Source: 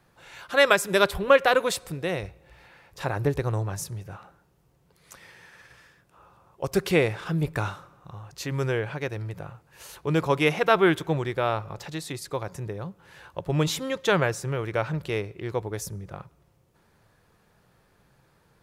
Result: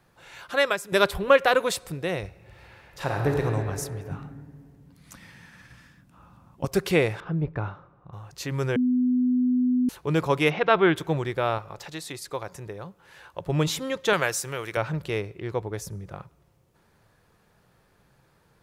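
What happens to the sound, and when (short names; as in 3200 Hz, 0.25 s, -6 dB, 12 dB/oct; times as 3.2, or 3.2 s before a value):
0.49–0.92 fade out quadratic, to -9.5 dB
2.26–3.42 reverb throw, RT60 2.4 s, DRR 1 dB
4.11–6.65 resonant low shelf 320 Hz +7.5 dB, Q 3
7.2–8.13 tape spacing loss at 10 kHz 42 dB
8.76–9.89 bleep 250 Hz -19 dBFS
10.5–10.96 LPF 4200 Hz 24 dB/oct
11.58–13.41 bell 120 Hz -6.5 dB 2.9 oct
14.13–14.77 tilt +3 dB/oct
15.38–15.91 high shelf 5300 Hz -5 dB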